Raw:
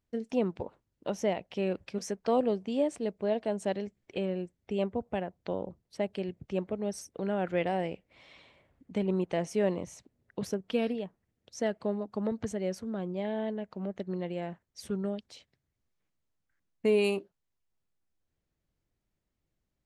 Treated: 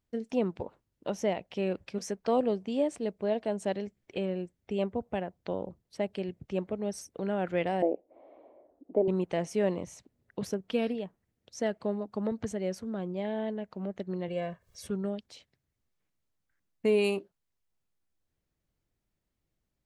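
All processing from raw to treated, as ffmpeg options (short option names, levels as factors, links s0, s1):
-filter_complex "[0:a]asettb=1/sr,asplit=3[s0][s1][s2];[s0]atrim=end=7.824[s3];[s1]atrim=start=7.82:end=9.08,asetpts=PTS-STARTPTS,afade=t=in:d=0.004:c=qsin,afade=t=out:st=1.256:d=0.004:c=qsin,lowpass=f=670:t=q:w=3.2,lowshelf=f=210:t=q:w=3:g=-13.5[s4];[s2]atrim=start=9.076[s5];[s3][s4]acrossfade=d=0.004:c1=hsin:c2=qsin[s6];[s6][s5]acrossfade=d=0.004:c1=qsin:c2=hsin,asettb=1/sr,asplit=3[s7][s8][s9];[s7]atrim=end=14.284[s10];[s8]atrim=start=14.28:end=14.87,asetpts=PTS-STARTPTS,afade=t=in:d=0.004:c=qsin,afade=t=out:st=0.586:d=0.004:c=qsin,aecho=1:1:1.8:0.85,atrim=end_sample=26019,acompressor=mode=upward:threshold=0.00447:ratio=2.5:attack=3.2:release=140:knee=2.83:detection=peak[s11];[s9]atrim=start=14.866[s12];[s10][s11]acrossfade=d=0.004:c1=hsin:c2=qsin[s13];[s13][s12]acrossfade=d=0.004:c1=qsin:c2=hsin"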